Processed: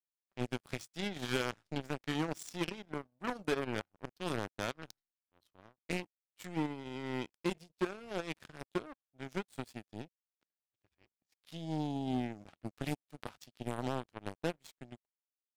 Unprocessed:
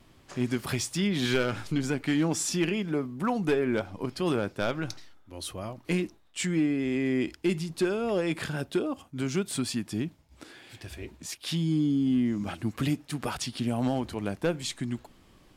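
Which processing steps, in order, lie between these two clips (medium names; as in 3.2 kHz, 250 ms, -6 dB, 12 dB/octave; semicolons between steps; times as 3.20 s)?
level-controlled noise filter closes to 2.9 kHz, open at -25.5 dBFS; resampled via 32 kHz; power-law waveshaper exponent 3; trim -3 dB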